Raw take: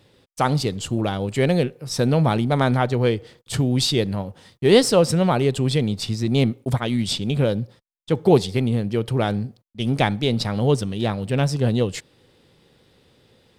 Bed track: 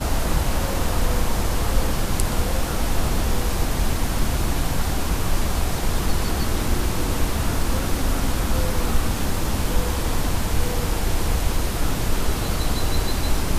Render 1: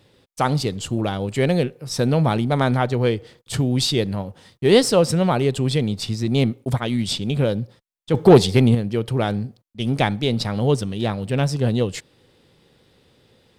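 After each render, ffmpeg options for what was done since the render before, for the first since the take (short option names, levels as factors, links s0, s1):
-filter_complex "[0:a]asettb=1/sr,asplit=3[s0][s1][s2];[s0]atrim=end=8.144[s3];[s1]atrim=start=8.14:end=8.75,asetpts=PTS-STARTPTS,afade=t=in:d=0.004:c=qsin,afade=t=out:st=0.606:d=0.004:c=qsin,acontrast=76[s4];[s2]atrim=start=8.746[s5];[s3][s4]acrossfade=d=0.004:c1=hsin:c2=qsin[s6];[s6][s5]acrossfade=d=0.004:c1=qsin:c2=hsin"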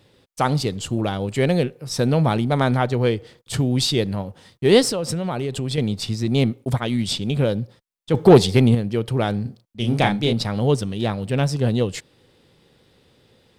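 -filter_complex "[0:a]asettb=1/sr,asplit=3[s0][s1][s2];[s0]atrim=end=4.894[s3];[s1]atrim=start=4.89:end=5.78,asetpts=PTS-STARTPTS,afade=t=in:d=0.004:c=qsin,afade=t=out:st=0.886:d=0.004:c=qsin,acompressor=threshold=0.0891:ratio=6:attack=3.2:release=140:knee=1:detection=peak[s4];[s2]atrim=start=5.776[s5];[s3][s4]acrossfade=d=0.004:c1=hsin:c2=qsin[s6];[s6][s5]acrossfade=d=0.004:c1=qsin:c2=hsin,asettb=1/sr,asplit=3[s7][s8][s9];[s7]atrim=end=9.424[s10];[s8]atrim=start=9.42:end=10.33,asetpts=PTS-STARTPTS,afade=t=in:d=0.004:c=qsin,afade=t=out:st=0.906:d=0.004:c=qsin,asplit=2[s11][s12];[s12]adelay=34,volume=0.596[s13];[s11][s13]amix=inputs=2:normalize=0,atrim=end_sample=40131[s14];[s9]atrim=start=10.326[s15];[s10][s14]acrossfade=d=0.004:c1=hsin:c2=qsin[s16];[s16][s15]acrossfade=d=0.004:c1=qsin:c2=hsin"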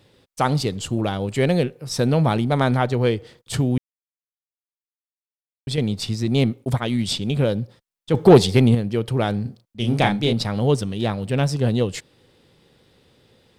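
-filter_complex "[0:a]asplit=3[s0][s1][s2];[s0]atrim=end=3.78,asetpts=PTS-STARTPTS,afade=t=out:st=3.776:d=0.004:c=hsin[s3];[s1]atrim=start=3.78:end=5.67,asetpts=PTS-STARTPTS,volume=0[s4];[s2]atrim=start=5.67,asetpts=PTS-STARTPTS,afade=t=in:d=0.004:c=hsin[s5];[s3][s4][s5]concat=n=3:v=0:a=1"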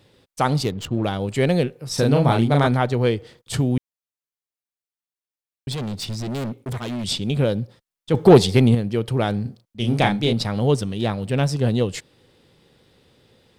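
-filter_complex "[0:a]asettb=1/sr,asplit=3[s0][s1][s2];[s0]atrim=end=0.644[s3];[s1]atrim=start=0.64:end=1.04,asetpts=PTS-STARTPTS,afade=t=in:d=0.004:c=qsin,afade=t=out:st=0.396:d=0.004:c=qsin,adynamicsmooth=sensitivity=6.5:basefreq=1300[s4];[s2]atrim=start=1.036[s5];[s3][s4]acrossfade=d=0.004:c1=hsin:c2=qsin[s6];[s6][s5]acrossfade=d=0.004:c1=qsin:c2=hsin,asettb=1/sr,asplit=3[s7][s8][s9];[s7]atrim=end=1.944[s10];[s8]atrim=start=1.94:end=2.67,asetpts=PTS-STARTPTS,afade=t=in:d=0.004:c=qsin,afade=t=out:st=0.726:d=0.004:c=qsin,asplit=2[s11][s12];[s12]adelay=35,volume=0.75[s13];[s11][s13]amix=inputs=2:normalize=0,atrim=end_sample=32193[s14];[s9]atrim=start=2.666[s15];[s10][s14]acrossfade=d=0.004:c1=hsin:c2=qsin[s16];[s16][s15]acrossfade=d=0.004:c1=qsin:c2=hsin,asettb=1/sr,asplit=3[s17][s18][s19];[s17]atrim=end=5.724[s20];[s18]atrim=start=5.72:end=7.04,asetpts=PTS-STARTPTS,afade=t=in:d=0.004:c=qsin,afade=t=out:st=1.316:d=0.004:c=qsin,asoftclip=type=hard:threshold=0.0562[s21];[s19]atrim=start=7.036[s22];[s20][s21]acrossfade=d=0.004:c1=hsin:c2=qsin[s23];[s23][s22]acrossfade=d=0.004:c1=qsin:c2=hsin"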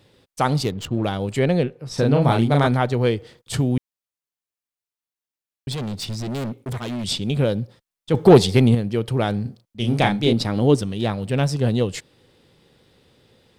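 -filter_complex "[0:a]asettb=1/sr,asplit=3[s0][s1][s2];[s0]atrim=end=1.394[s3];[s1]atrim=start=1.39:end=2.22,asetpts=PTS-STARTPTS,afade=t=in:d=0.004:c=qsin,afade=t=out:st=0.826:d=0.004:c=qsin,aemphasis=mode=reproduction:type=50kf[s4];[s2]atrim=start=2.216[s5];[s3][s4]acrossfade=d=0.004:c1=hsin:c2=qsin[s6];[s6][s5]acrossfade=d=0.004:c1=qsin:c2=hsin,asettb=1/sr,asplit=3[s7][s8][s9];[s7]atrim=end=10.264[s10];[s8]atrim=start=10.26:end=10.82,asetpts=PTS-STARTPTS,afade=t=in:d=0.004:c=qsin,afade=t=out:st=0.556:d=0.004:c=qsin,equalizer=f=310:w=2.3:g=8[s11];[s9]atrim=start=10.816[s12];[s10][s11]acrossfade=d=0.004:c1=hsin:c2=qsin[s13];[s13][s12]acrossfade=d=0.004:c1=qsin:c2=hsin"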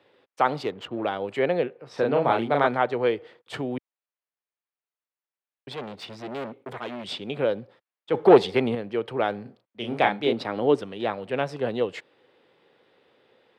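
-filter_complex "[0:a]highpass=100,acrossover=split=330 3100:gain=0.126 1 0.0891[s0][s1][s2];[s0][s1][s2]amix=inputs=3:normalize=0"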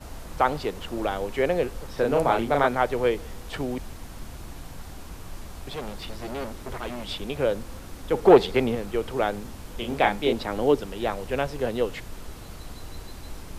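-filter_complex "[1:a]volume=0.133[s0];[0:a][s0]amix=inputs=2:normalize=0"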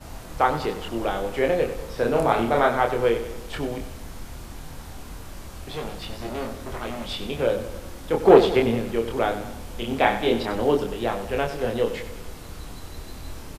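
-filter_complex "[0:a]asplit=2[s0][s1];[s1]adelay=26,volume=0.631[s2];[s0][s2]amix=inputs=2:normalize=0,aecho=1:1:95|190|285|380|475|570:0.266|0.141|0.0747|0.0396|0.021|0.0111"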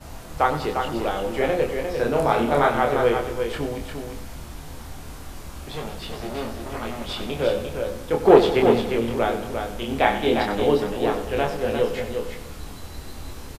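-filter_complex "[0:a]asplit=2[s0][s1];[s1]adelay=14,volume=0.266[s2];[s0][s2]amix=inputs=2:normalize=0,asplit=2[s3][s4];[s4]aecho=0:1:350:0.501[s5];[s3][s5]amix=inputs=2:normalize=0"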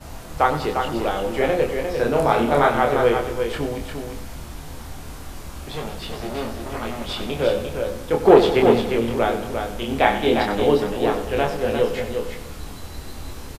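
-af "volume=1.26,alimiter=limit=0.891:level=0:latency=1"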